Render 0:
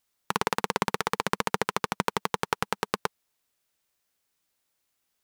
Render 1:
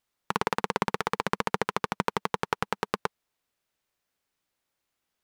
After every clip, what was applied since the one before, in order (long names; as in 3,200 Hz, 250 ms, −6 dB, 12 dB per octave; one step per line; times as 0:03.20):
high-shelf EQ 4,500 Hz −8.5 dB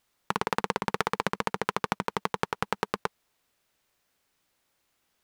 compressor whose output falls as the input rises −31 dBFS, ratio −1
level +3.5 dB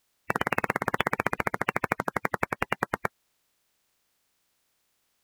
spectral magnitudes quantised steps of 30 dB
level +2 dB